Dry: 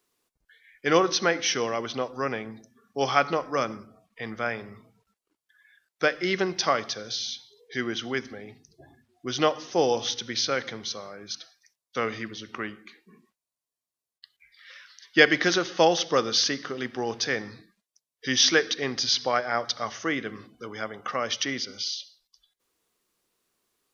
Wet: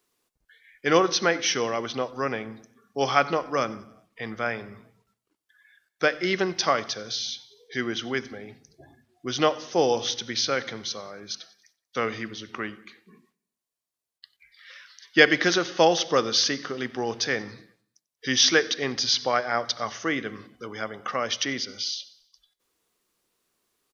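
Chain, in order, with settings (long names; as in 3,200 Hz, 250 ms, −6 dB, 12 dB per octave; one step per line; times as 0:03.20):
repeating echo 93 ms, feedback 54%, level −23.5 dB
level +1 dB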